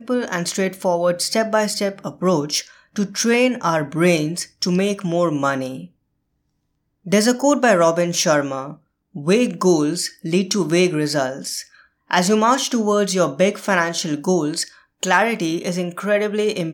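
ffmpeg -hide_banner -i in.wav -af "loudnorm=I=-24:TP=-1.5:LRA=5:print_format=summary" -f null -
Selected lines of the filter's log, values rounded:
Input Integrated:    -19.5 LUFS
Input True Peak:      -3.5 dBTP
Input LRA:             1.9 LU
Input Threshold:     -29.7 LUFS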